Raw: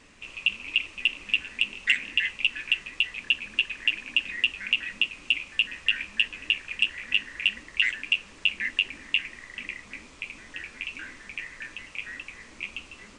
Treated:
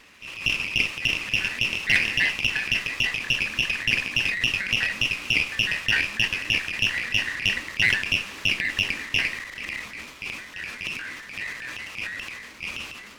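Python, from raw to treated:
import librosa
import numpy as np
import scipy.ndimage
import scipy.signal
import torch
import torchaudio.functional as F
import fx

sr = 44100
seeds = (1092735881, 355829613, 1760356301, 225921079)

y = scipy.signal.sosfilt(scipy.signal.butter(2, 56.0, 'highpass', fs=sr, output='sos'), x)
y = fx.high_shelf(y, sr, hz=8100.0, db=-9.5)
y = fx.transient(y, sr, attack_db=-7, sustain_db=9)
y = fx.tilt_shelf(y, sr, db=-5.5, hz=970.0)
y = fx.running_max(y, sr, window=3)
y = F.gain(torch.from_numpy(y), 2.0).numpy()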